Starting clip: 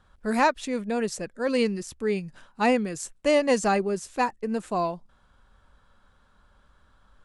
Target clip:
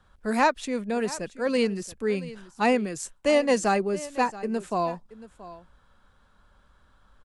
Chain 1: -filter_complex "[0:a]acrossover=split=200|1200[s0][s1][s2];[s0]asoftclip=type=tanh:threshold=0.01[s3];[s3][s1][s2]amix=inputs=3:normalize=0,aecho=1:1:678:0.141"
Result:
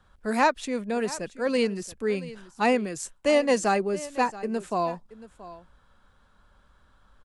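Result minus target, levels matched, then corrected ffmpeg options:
saturation: distortion +9 dB
-filter_complex "[0:a]acrossover=split=200|1200[s0][s1][s2];[s0]asoftclip=type=tanh:threshold=0.0237[s3];[s3][s1][s2]amix=inputs=3:normalize=0,aecho=1:1:678:0.141"

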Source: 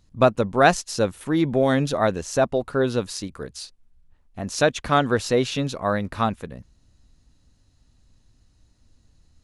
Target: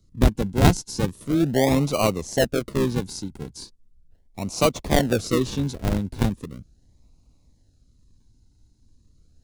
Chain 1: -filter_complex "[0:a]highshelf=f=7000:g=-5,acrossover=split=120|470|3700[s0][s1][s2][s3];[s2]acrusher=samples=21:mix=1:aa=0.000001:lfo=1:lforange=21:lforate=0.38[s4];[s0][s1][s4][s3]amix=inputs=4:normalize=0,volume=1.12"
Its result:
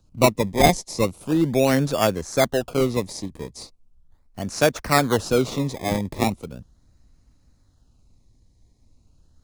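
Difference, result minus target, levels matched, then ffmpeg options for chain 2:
decimation with a swept rate: distortion -16 dB
-filter_complex "[0:a]highshelf=f=7000:g=-5,acrossover=split=120|470|3700[s0][s1][s2][s3];[s2]acrusher=samples=50:mix=1:aa=0.000001:lfo=1:lforange=50:lforate=0.38[s4];[s0][s1][s4][s3]amix=inputs=4:normalize=0,volume=1.12"

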